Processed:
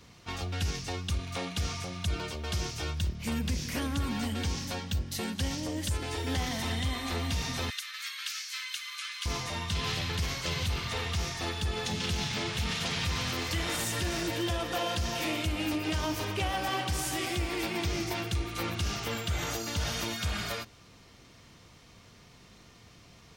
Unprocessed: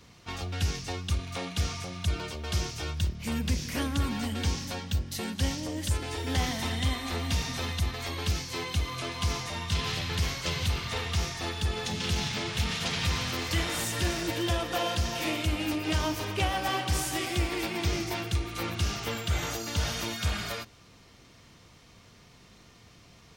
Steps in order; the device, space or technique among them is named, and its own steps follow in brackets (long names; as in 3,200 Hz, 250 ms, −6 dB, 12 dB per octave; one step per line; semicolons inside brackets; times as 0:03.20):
0:07.70–0:09.26: Butterworth high-pass 1,300 Hz 48 dB per octave
clipper into limiter (hard clipping −18 dBFS, distortion −49 dB; brickwall limiter −22.5 dBFS, peak gain reduction 4.5 dB)